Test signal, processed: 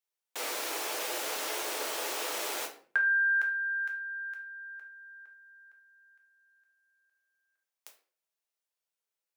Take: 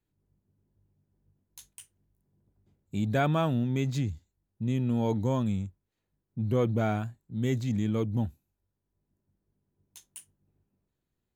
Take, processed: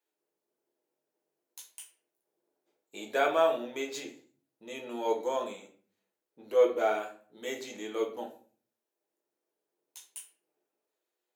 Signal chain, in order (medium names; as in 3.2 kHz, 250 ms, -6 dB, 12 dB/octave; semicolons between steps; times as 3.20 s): high-pass 430 Hz 24 dB/octave; simulated room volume 37 m³, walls mixed, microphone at 0.58 m